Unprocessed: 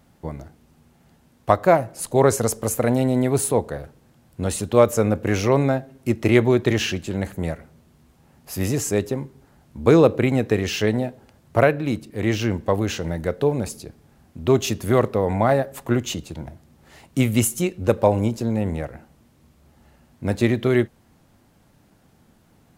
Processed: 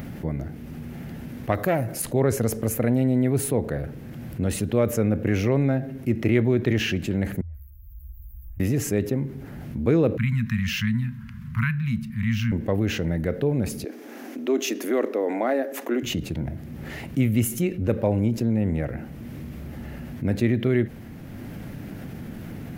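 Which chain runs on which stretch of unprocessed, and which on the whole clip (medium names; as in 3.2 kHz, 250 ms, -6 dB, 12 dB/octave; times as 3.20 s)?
1.52–2.02 s: treble shelf 4.6 kHz +11.5 dB + transformer saturation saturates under 880 Hz
7.41–8.60 s: inverse Chebyshev band-stop 140–8700 Hz, stop band 50 dB + phase dispersion highs, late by 131 ms, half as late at 2.7 kHz
10.17–12.52 s: Chebyshev band-stop 230–990 Hz, order 5 + tape noise reduction on one side only decoder only
13.84–16.03 s: elliptic high-pass 270 Hz, stop band 60 dB + peaking EQ 6.2 kHz +6 dB 0.47 oct
whole clip: upward compressor, threshold -40 dBFS; graphic EQ 125/250/1000/2000/4000/8000 Hz +4/+4/-8/+4/-5/-10 dB; level flattener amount 50%; trim -8 dB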